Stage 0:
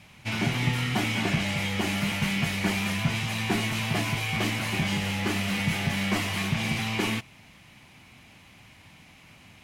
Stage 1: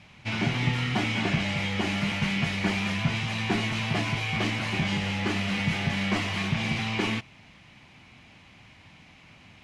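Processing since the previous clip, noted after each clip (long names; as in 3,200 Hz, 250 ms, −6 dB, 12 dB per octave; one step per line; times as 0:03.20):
low-pass filter 5,600 Hz 12 dB per octave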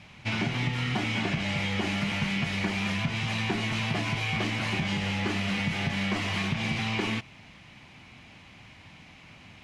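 downward compressor, threshold −27 dBFS, peak gain reduction 8 dB
level +2 dB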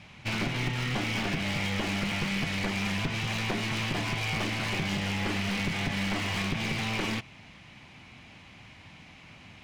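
wavefolder on the positive side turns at −27 dBFS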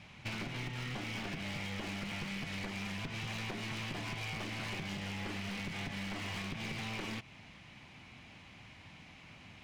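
downward compressor, threshold −33 dBFS, peak gain reduction 8.5 dB
level −4 dB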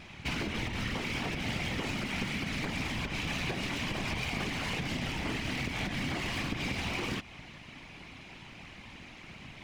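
random phases in short frames
level +6 dB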